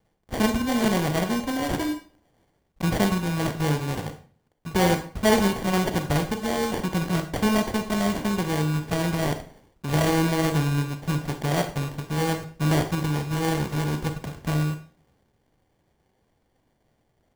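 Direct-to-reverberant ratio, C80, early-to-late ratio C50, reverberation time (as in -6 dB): 7.0 dB, 14.5 dB, 10.0 dB, 0.45 s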